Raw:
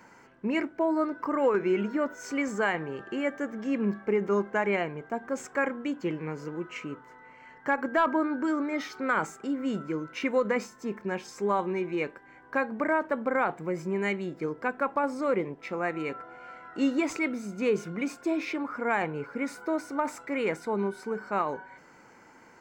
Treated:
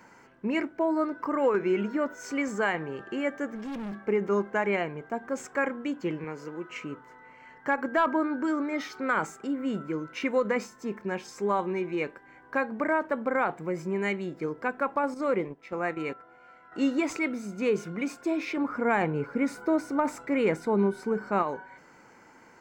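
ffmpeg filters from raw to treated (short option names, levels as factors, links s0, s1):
-filter_complex "[0:a]asettb=1/sr,asplit=3[s0][s1][s2];[s0]atrim=end=3.554[s3];[s1]atrim=start=3.55:end=4,asetpts=PTS-STARTPTS,afade=t=in:d=0.004:c=qsin,afade=t=out:st=0.446:d=0.004:c=qsin,asoftclip=type=hard:threshold=0.0211[s4];[s2]atrim=start=3.996[s5];[s3][s4]acrossfade=d=0.004:c1=hsin:c2=qsin[s6];[s6][s5]acrossfade=d=0.004:c1=qsin:c2=hsin,asettb=1/sr,asplit=3[s7][s8][s9];[s7]atrim=end=6.244[s10];[s8]atrim=start=6.24:end=6.7,asetpts=PTS-STARTPTS,afade=t=in:d=0.004:c=qsin,afade=t=out:st=0.456:d=0.004:c=qsin,highpass=f=270:p=1[s11];[s9]atrim=start=6.696[s12];[s10][s11]acrossfade=d=0.004:c1=hsin:c2=qsin[s13];[s13][s12]acrossfade=d=0.004:c1=qsin:c2=hsin,asettb=1/sr,asplit=3[s14][s15][s16];[s14]atrim=end=9.474[s17];[s15]atrim=start=9.47:end=9.93,asetpts=PTS-STARTPTS,afade=t=in:d=0.004:c=qsin,afade=t=out:st=0.456:d=0.004:c=qsin,equalizer=f=5600:w=1.5:g=-6.5[s18];[s16]atrim=start=9.926[s19];[s17][s18]acrossfade=d=0.004:c1=hsin:c2=qsin[s20];[s20][s19]acrossfade=d=0.004:c1=qsin:c2=hsin,asettb=1/sr,asplit=3[s21][s22][s23];[s21]atrim=end=15.144[s24];[s22]atrim=start=15.14:end=16.72,asetpts=PTS-STARTPTS,afade=t=in:d=0.004:c=qsin,afade=t=out:st=1.576:d=0.004:c=qsin,agate=range=0.398:threshold=0.0141:ratio=16:release=100:detection=peak[s25];[s23]atrim=start=16.716[s26];[s24][s25]acrossfade=d=0.004:c1=hsin:c2=qsin[s27];[s27][s26]acrossfade=d=0.004:c1=qsin:c2=hsin,asettb=1/sr,asplit=3[s28][s29][s30];[s28]atrim=end=18.574[s31];[s29]atrim=start=18.57:end=21.43,asetpts=PTS-STARTPTS,afade=t=in:d=0.004:c=qsin,afade=t=out:st=2.856:d=0.004:c=qsin,lowshelf=f=460:g=7.5[s32];[s30]atrim=start=21.426[s33];[s31][s32]acrossfade=d=0.004:c1=hsin:c2=qsin[s34];[s34][s33]acrossfade=d=0.004:c1=qsin:c2=hsin"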